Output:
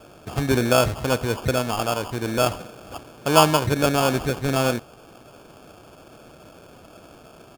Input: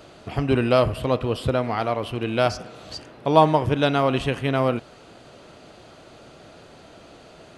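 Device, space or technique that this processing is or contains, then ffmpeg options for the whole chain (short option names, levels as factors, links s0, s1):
crushed at another speed: -af "asetrate=35280,aresample=44100,acrusher=samples=28:mix=1:aa=0.000001,asetrate=55125,aresample=44100"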